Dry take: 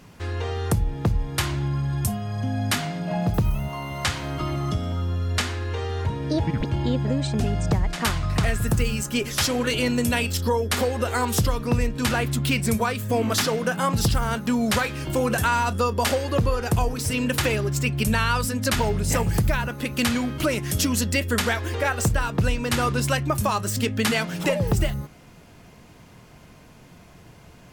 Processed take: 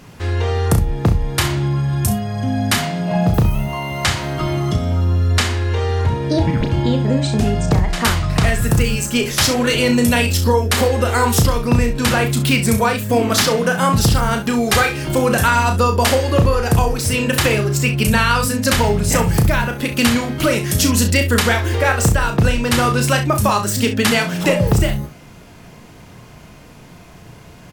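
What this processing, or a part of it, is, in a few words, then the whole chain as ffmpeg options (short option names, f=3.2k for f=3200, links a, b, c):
slapback doubling: -filter_complex "[0:a]asettb=1/sr,asplit=3[a][b][c];[a]atrim=end=14.484[d];[b]atrim=start=14.48:end=14.97,asetpts=PTS-STARTPTS,afade=t=in:d=0.004:c=qsin,afade=t=out:st=0.486:d=0.004:c=qsin,aecho=1:1:2.5:0.55,atrim=end_sample=21609[e];[c]atrim=start=14.966[f];[d][e]acrossfade=d=0.004:c1=hsin:c2=qsin[g];[g][f]acrossfade=d=0.004:c1=qsin:c2=hsin,asplit=3[h][i][j];[i]adelay=34,volume=-7dB[k];[j]adelay=66,volume=-12dB[l];[h][k][l]amix=inputs=3:normalize=0,volume=6.5dB"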